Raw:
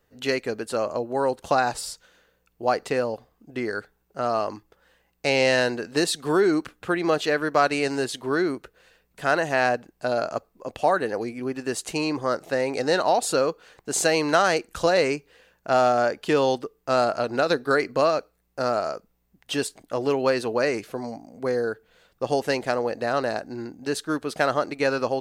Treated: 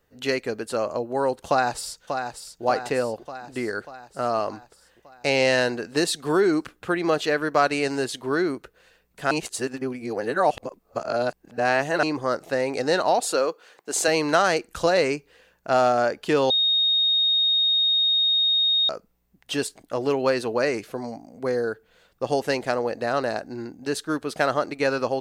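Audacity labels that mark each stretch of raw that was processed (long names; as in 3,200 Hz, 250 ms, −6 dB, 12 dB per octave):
1.480000	2.630000	delay throw 590 ms, feedback 60%, level −7 dB
9.310000	12.030000	reverse
13.200000	14.080000	high-pass filter 310 Hz
16.500000	18.890000	beep over 3,720 Hz −17.5 dBFS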